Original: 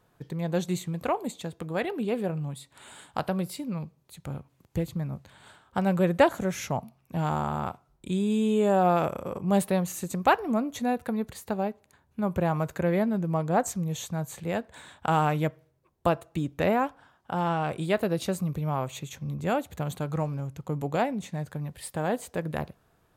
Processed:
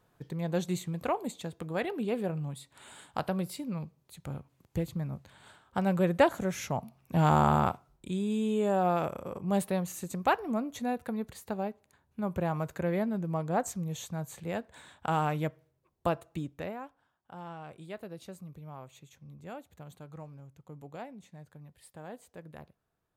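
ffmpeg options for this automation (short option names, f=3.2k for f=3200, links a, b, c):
-af "volume=6dB,afade=t=in:st=6.76:d=0.75:silence=0.354813,afade=t=out:st=7.51:d=0.6:silence=0.281838,afade=t=out:st=16.3:d=0.43:silence=0.266073"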